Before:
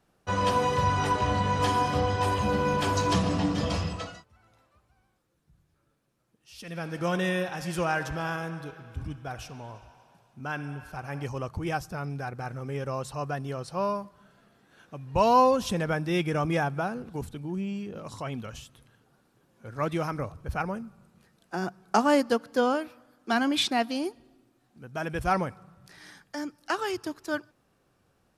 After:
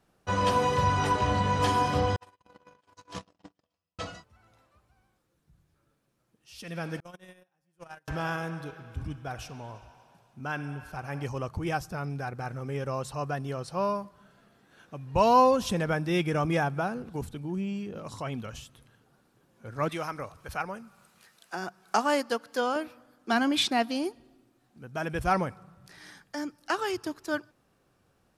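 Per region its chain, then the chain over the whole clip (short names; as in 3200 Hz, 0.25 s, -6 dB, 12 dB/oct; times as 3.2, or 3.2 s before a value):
2.16–3.99 gate -22 dBFS, range -54 dB + HPF 43 Hz + low shelf 330 Hz -10 dB
7–8.08 gate -24 dBFS, range -42 dB + bell 11000 Hz +10.5 dB 1.1 oct + mismatched tape noise reduction decoder only
19.89–22.76 low shelf 410 Hz -11 dB + mismatched tape noise reduction encoder only
whole clip: dry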